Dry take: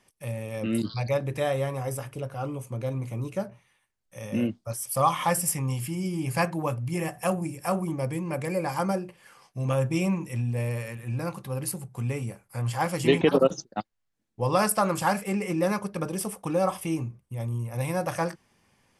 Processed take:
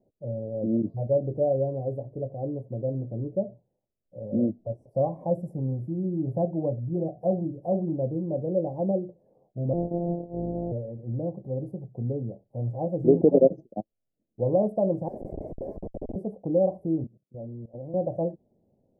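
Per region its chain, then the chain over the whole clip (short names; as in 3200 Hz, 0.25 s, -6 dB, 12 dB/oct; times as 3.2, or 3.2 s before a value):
4.39–5.13 LPF 4900 Hz + upward compressor, threshold -30 dBFS
9.73–10.72 sample sorter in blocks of 256 samples + overdrive pedal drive 8 dB, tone 1000 Hz, clips at -15 dBFS
15.08–16.16 HPF 980 Hz + tilt +4.5 dB/oct + Schmitt trigger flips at -31.5 dBFS
17.04–17.94 HPF 140 Hz 24 dB/oct + level quantiser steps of 19 dB
whole clip: elliptic low-pass 650 Hz, stop band 50 dB; low shelf 170 Hz -7.5 dB; gain +4.5 dB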